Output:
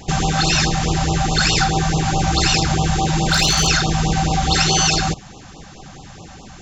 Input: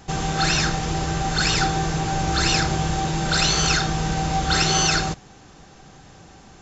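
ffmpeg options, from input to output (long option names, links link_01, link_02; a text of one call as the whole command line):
ffmpeg -i in.wav -filter_complex "[0:a]asplit=3[link_01][link_02][link_03];[link_01]afade=type=out:start_time=3.24:duration=0.02[link_04];[link_02]aeval=exprs='clip(val(0),-1,0.168)':channel_layout=same,afade=type=in:start_time=3.24:duration=0.02,afade=type=out:start_time=3.66:duration=0.02[link_05];[link_03]afade=type=in:start_time=3.66:duration=0.02[link_06];[link_04][link_05][link_06]amix=inputs=3:normalize=0,acompressor=threshold=-24dB:ratio=2,afftfilt=real='re*(1-between(b*sr/1024,340*pow(1900/340,0.5+0.5*sin(2*PI*4.7*pts/sr))/1.41,340*pow(1900/340,0.5+0.5*sin(2*PI*4.7*pts/sr))*1.41))':imag='im*(1-between(b*sr/1024,340*pow(1900/340,0.5+0.5*sin(2*PI*4.7*pts/sr))/1.41,340*pow(1900/340,0.5+0.5*sin(2*PI*4.7*pts/sr))*1.41))':win_size=1024:overlap=0.75,volume=8.5dB" out.wav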